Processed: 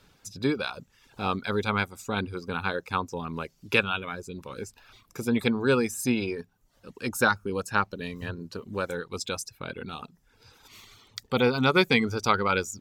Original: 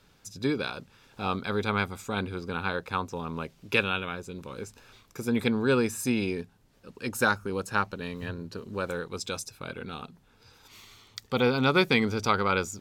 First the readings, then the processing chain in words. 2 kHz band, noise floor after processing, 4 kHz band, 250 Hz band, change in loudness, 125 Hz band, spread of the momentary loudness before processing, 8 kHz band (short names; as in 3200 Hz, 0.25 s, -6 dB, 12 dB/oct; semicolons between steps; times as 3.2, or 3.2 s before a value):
+1.5 dB, -66 dBFS, +1.5 dB, +0.5 dB, +1.0 dB, +0.5 dB, 16 LU, +1.5 dB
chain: reverb removal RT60 0.64 s; gain +2 dB